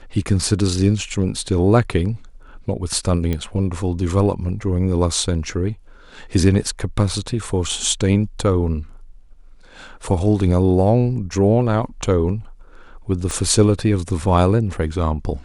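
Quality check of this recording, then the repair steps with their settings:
3.33 s: pop -11 dBFS
13.31 s: pop -11 dBFS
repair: de-click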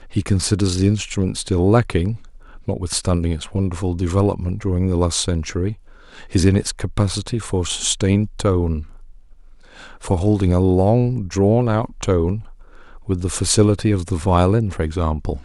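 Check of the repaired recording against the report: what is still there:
13.31 s: pop

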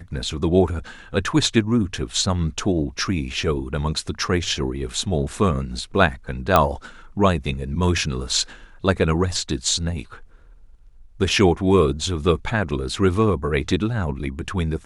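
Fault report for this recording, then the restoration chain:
6.56 s: pop -2 dBFS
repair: de-click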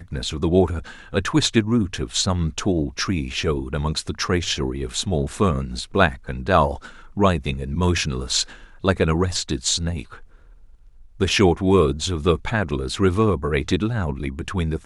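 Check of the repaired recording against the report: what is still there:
nothing left

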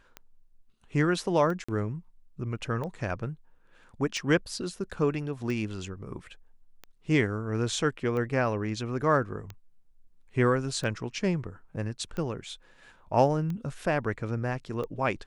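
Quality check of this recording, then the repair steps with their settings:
tick 45 rpm -24 dBFS
1.64–1.69 s: dropout 45 ms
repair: de-click; interpolate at 1.64 s, 45 ms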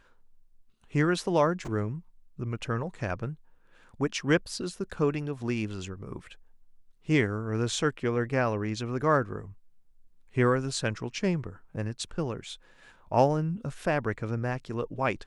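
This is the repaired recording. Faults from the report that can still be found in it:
nothing left

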